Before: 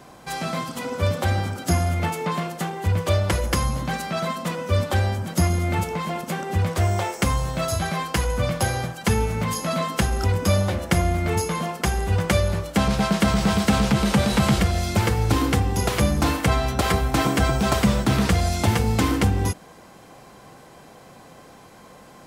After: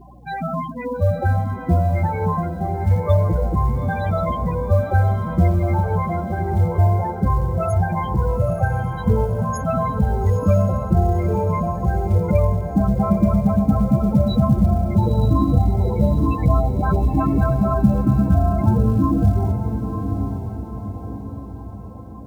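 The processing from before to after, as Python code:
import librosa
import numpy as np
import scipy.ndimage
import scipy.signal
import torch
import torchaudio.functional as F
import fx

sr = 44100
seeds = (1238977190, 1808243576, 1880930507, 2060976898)

y = fx.spec_topn(x, sr, count=8)
y = fx.add_hum(y, sr, base_hz=60, snr_db=27)
y = fx.quant_companded(y, sr, bits=8)
y = fx.echo_diffused(y, sr, ms=921, feedback_pct=49, wet_db=-7.0)
y = y * librosa.db_to_amplitude(4.5)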